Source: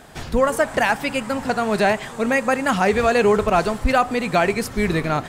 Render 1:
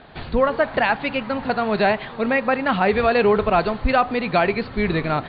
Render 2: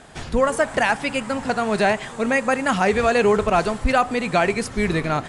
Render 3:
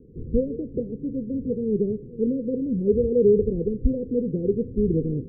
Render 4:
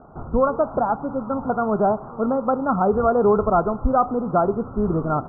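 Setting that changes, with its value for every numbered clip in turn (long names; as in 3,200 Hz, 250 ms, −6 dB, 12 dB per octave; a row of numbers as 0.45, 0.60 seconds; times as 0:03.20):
Chebyshev low-pass filter, frequency: 4,500, 11,000, 500, 1,400 Hertz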